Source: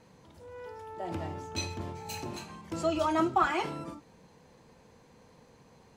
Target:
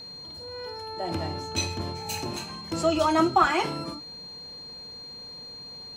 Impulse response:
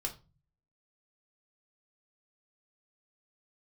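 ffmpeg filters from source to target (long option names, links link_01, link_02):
-af "equalizer=frequency=9500:width=0.4:gain=3,aeval=exprs='val(0)+0.00562*sin(2*PI*4200*n/s)':channel_layout=same,volume=5.5dB"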